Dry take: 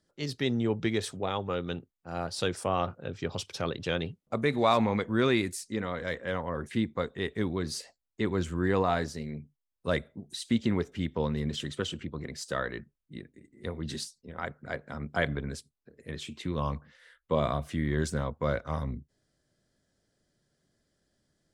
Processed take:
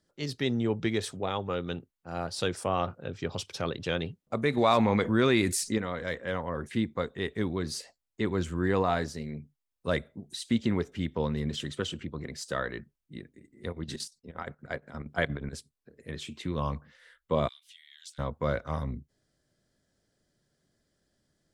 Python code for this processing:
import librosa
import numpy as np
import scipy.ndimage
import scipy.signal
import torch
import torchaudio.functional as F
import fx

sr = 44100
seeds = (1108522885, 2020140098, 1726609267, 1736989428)

y = fx.env_flatten(x, sr, amount_pct=50, at=(4.57, 5.78))
y = fx.chopper(y, sr, hz=8.5, depth_pct=65, duty_pct=65, at=(13.68, 15.56), fade=0.02)
y = fx.ladder_highpass(y, sr, hz=2800.0, resonance_pct=50, at=(17.47, 18.18), fade=0.02)